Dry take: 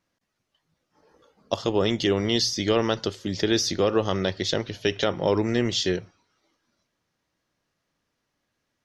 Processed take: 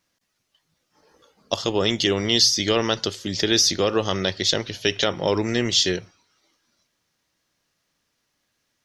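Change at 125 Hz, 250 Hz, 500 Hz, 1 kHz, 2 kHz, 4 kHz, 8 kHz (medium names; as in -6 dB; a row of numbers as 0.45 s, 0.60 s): 0.0 dB, 0.0 dB, +0.5 dB, +1.5 dB, +4.0 dB, +7.0 dB, +8.5 dB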